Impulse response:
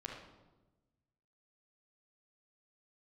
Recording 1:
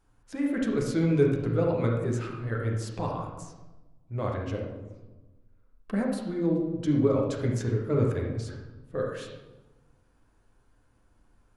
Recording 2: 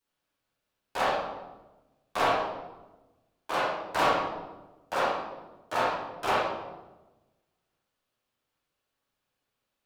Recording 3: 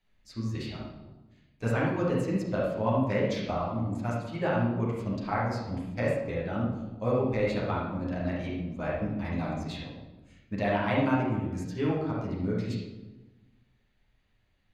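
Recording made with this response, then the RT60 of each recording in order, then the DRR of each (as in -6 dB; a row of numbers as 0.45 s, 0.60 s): 1; 1.1 s, 1.1 s, 1.1 s; -1.5 dB, -12.5 dB, -7.5 dB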